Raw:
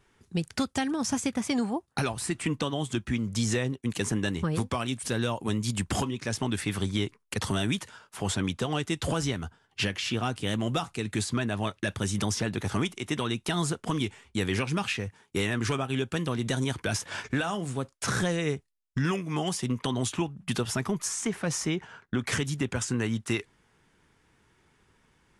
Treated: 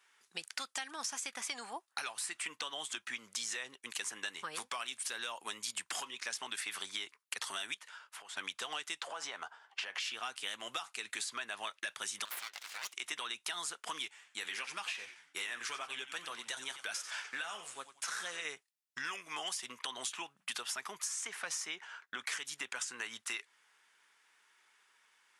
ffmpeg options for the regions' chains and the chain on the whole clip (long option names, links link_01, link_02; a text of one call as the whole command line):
ffmpeg -i in.wav -filter_complex "[0:a]asettb=1/sr,asplit=3[link_01][link_02][link_03];[link_01]atrim=end=7.744[link_04];[link_02]atrim=start=7.74:end=8.37,asetpts=PTS-STARTPTS,afade=type=in:duration=0.004:curve=qsin,afade=type=out:start_time=0.626:duration=0.004:curve=qsin,bass=frequency=250:gain=-5,treble=frequency=4000:gain=-6,acompressor=threshold=-44dB:ratio=4:attack=3.2:release=140:knee=1:detection=peak[link_05];[link_03]atrim=start=8.366[link_06];[link_04][link_05]acrossfade=duration=0.004:curve1=hsin:curve2=qsin[link_07];[link_07][link_06]acrossfade=duration=0.004:curve1=qsin:curve2=hsin,asettb=1/sr,asplit=3[link_08][link_09][link_10];[link_08]atrim=end=9.014[link_11];[link_09]atrim=start=9.01:end=10,asetpts=PTS-STARTPTS,afade=type=in:duration=0.004:curve=qsin,afade=type=out:start_time=0.986:duration=0.004:curve=qsin,lowpass=8600,equalizer=frequency=750:width=0.61:gain=13.5,acompressor=threshold=-30dB:ratio=6:attack=3.2:release=140:knee=1:detection=peak[link_12];[link_10]atrim=start=9.996[link_13];[link_11][link_12]acrossfade=duration=0.004:curve1=hsin:curve2=qsin[link_14];[link_14][link_13]acrossfade=duration=0.004:curve1=qsin:curve2=hsin,asettb=1/sr,asplit=3[link_15][link_16][link_17];[link_15]atrim=end=12.254[link_18];[link_16]atrim=start=12.25:end=12.93,asetpts=PTS-STARTPTS,afade=type=in:duration=0.004:curve=qsin,afade=type=out:start_time=0.676:duration=0.004:curve=qsin,highpass=frequency=1500:poles=1,adynamicsmooth=sensitivity=5.5:basefreq=5400,aeval=exprs='abs(val(0))':channel_layout=same[link_19];[link_17]atrim=start=12.926[link_20];[link_18][link_19]acrossfade=duration=0.004:curve1=hsin:curve2=qsin[link_21];[link_21][link_20]acrossfade=duration=0.004:curve1=qsin:curve2=hsin,asettb=1/sr,asplit=3[link_22][link_23][link_24];[link_22]atrim=end=14.084[link_25];[link_23]atrim=start=14.08:end=18.45,asetpts=PTS-STARTPTS,afade=type=in:duration=0.004:curve=qsin,afade=type=out:start_time=4.366:duration=0.004:curve=qsin,flanger=delay=4.2:depth=4.6:regen=-62:speed=1.7:shape=triangular,asplit=5[link_26][link_27][link_28][link_29][link_30];[link_27]adelay=90,afreqshift=-130,volume=-12dB[link_31];[link_28]adelay=180,afreqshift=-260,volume=-20.4dB[link_32];[link_29]adelay=270,afreqshift=-390,volume=-28.8dB[link_33];[link_30]adelay=360,afreqshift=-520,volume=-37.2dB[link_34];[link_26][link_31][link_32][link_33][link_34]amix=inputs=5:normalize=0,atrim=end_sample=192717[link_35];[link_24]atrim=start=18.446[link_36];[link_25][link_35]acrossfade=duration=0.004:curve1=hsin:curve2=qsin[link_37];[link_37][link_36]acrossfade=duration=0.004:curve1=qsin:curve2=hsin,highpass=1200,acompressor=threshold=-37dB:ratio=6,volume=1dB" out.wav